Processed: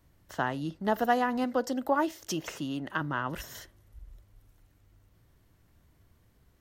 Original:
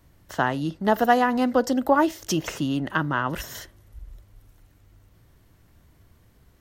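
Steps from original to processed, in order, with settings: 1.44–3.01 s: bass shelf 150 Hz -7.5 dB; trim -7 dB

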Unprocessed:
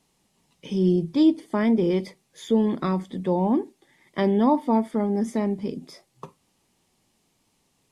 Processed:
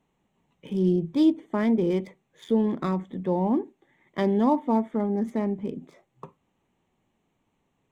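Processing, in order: local Wiener filter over 9 samples; trim -2 dB

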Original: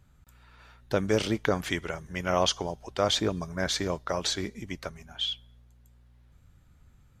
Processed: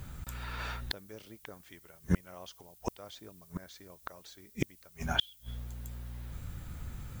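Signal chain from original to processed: inverted gate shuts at -29 dBFS, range -39 dB; added noise violet -76 dBFS; trim +15.5 dB

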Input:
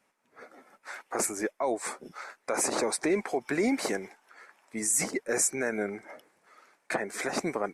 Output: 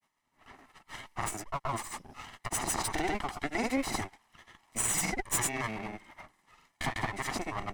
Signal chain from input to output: comb filter that takes the minimum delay 0.99 ms; granulator, spray 100 ms, pitch spread up and down by 0 st

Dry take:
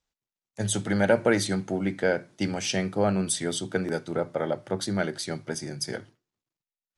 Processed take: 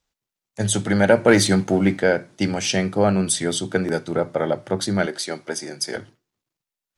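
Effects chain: 1.28–1.99 s: waveshaping leveller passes 1; 5.06–5.96 s: high-pass 310 Hz 12 dB/octave; trim +6 dB

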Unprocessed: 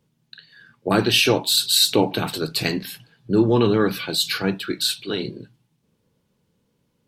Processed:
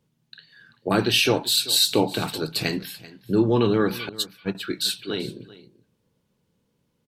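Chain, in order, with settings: 4.09–4.55 s: gate -19 dBFS, range -39 dB; on a send: delay 387 ms -19 dB; on the sum: trim -2.5 dB

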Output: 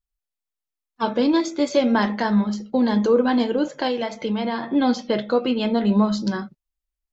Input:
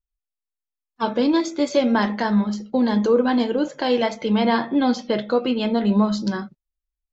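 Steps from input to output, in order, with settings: 3.87–4.63 s: compression, threshold -21 dBFS, peak gain reduction 7.5 dB

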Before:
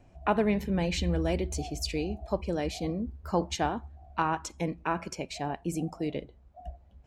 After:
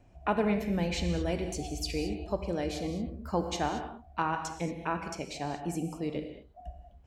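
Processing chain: gated-style reverb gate 250 ms flat, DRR 6 dB; trim -2.5 dB

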